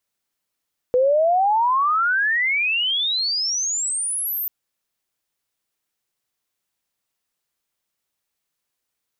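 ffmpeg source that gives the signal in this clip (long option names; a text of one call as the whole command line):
ffmpeg -f lavfi -i "aevalsrc='pow(10,(-13.5-9*t/3.54)/20)*sin(2*PI*490*3.54/log(14000/490)*(exp(log(14000/490)*t/3.54)-1))':duration=3.54:sample_rate=44100" out.wav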